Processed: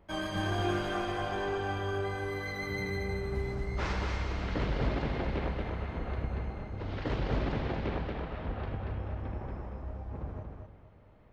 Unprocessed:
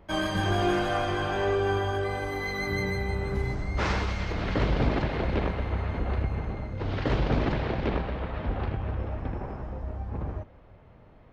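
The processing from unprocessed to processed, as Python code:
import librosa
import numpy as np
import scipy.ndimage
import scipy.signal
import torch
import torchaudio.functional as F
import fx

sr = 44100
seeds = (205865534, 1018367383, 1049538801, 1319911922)

y = fx.echo_feedback(x, sr, ms=233, feedback_pct=30, wet_db=-4.5)
y = y * librosa.db_to_amplitude(-7.0)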